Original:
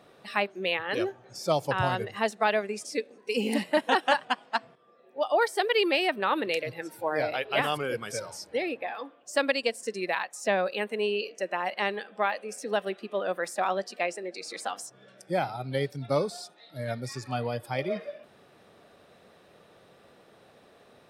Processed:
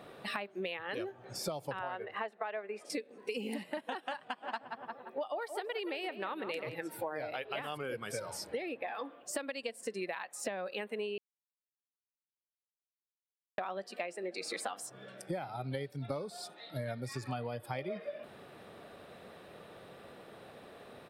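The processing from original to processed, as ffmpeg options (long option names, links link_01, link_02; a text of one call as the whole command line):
ffmpeg -i in.wav -filter_complex "[0:a]asettb=1/sr,asplit=3[link_01][link_02][link_03];[link_01]atrim=end=1.794[link_04];[link_02]atrim=start=1.79:end=2.9,asetpts=PTS-STARTPTS,afade=type=in:duration=0.004:curve=qsin,afade=type=out:start_time=1.106:duration=0.004:curve=qsin,acrossover=split=340 2800:gain=0.141 1 0.112[link_05][link_06][link_07];[link_05][link_06][link_07]amix=inputs=3:normalize=0[link_08];[link_03]atrim=start=2.896[link_09];[link_04][link_08]acrossfade=duration=0.004:curve1=hsin:curve2=qsin[link_10];[link_10][link_09]acrossfade=duration=0.004:curve1=qsin:curve2=hsin,asplit=3[link_11][link_12][link_13];[link_11]afade=type=out:start_time=4.41:duration=0.02[link_14];[link_12]asplit=2[link_15][link_16];[link_16]adelay=173,lowpass=frequency=2100:poles=1,volume=-11.5dB,asplit=2[link_17][link_18];[link_18]adelay=173,lowpass=frequency=2100:poles=1,volume=0.5,asplit=2[link_19][link_20];[link_20]adelay=173,lowpass=frequency=2100:poles=1,volume=0.5,asplit=2[link_21][link_22];[link_22]adelay=173,lowpass=frequency=2100:poles=1,volume=0.5,asplit=2[link_23][link_24];[link_24]adelay=173,lowpass=frequency=2100:poles=1,volume=0.5[link_25];[link_15][link_17][link_19][link_21][link_23][link_25]amix=inputs=6:normalize=0,afade=type=in:start_time=4.41:duration=0.02,afade=type=out:start_time=6.74:duration=0.02[link_26];[link_13]afade=type=in:start_time=6.74:duration=0.02[link_27];[link_14][link_26][link_27]amix=inputs=3:normalize=0,asplit=3[link_28][link_29][link_30];[link_28]atrim=end=11.18,asetpts=PTS-STARTPTS,afade=type=out:start_time=11.176:duration=0.004:curve=hsin[link_31];[link_29]atrim=start=11.18:end=13.58,asetpts=PTS-STARTPTS,volume=0[link_32];[link_30]atrim=start=13.58,asetpts=PTS-STARTPTS,afade=type=in:duration=0.004:curve=hsin[link_33];[link_31][link_32][link_33]concat=n=3:v=0:a=1,equalizer=frequency=6000:width_type=o:width=0.72:gain=-7.5,alimiter=limit=-17dB:level=0:latency=1:release=272,acompressor=threshold=-39dB:ratio=16,volume=4.5dB" out.wav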